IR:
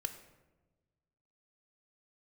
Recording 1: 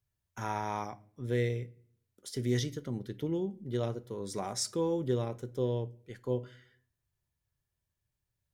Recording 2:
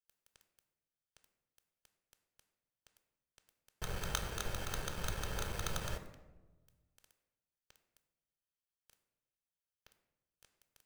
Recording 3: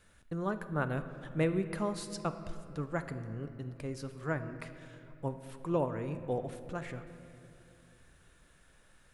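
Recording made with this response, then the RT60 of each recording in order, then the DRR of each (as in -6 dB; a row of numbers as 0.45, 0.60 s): 2; not exponential, 1.2 s, 2.9 s; 15.5, 7.5, 9.5 dB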